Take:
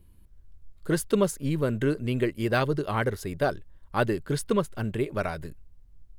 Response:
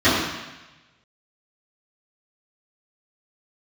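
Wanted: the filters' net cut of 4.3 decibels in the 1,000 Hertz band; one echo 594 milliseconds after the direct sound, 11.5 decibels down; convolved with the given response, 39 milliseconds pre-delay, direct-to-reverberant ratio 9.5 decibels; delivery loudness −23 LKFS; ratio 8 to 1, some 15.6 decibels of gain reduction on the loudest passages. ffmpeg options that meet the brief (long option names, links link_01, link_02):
-filter_complex "[0:a]equalizer=frequency=1000:width_type=o:gain=-6,acompressor=threshold=-36dB:ratio=8,aecho=1:1:594:0.266,asplit=2[link_01][link_02];[1:a]atrim=start_sample=2205,adelay=39[link_03];[link_02][link_03]afir=irnorm=-1:irlink=0,volume=-33dB[link_04];[link_01][link_04]amix=inputs=2:normalize=0,volume=17dB"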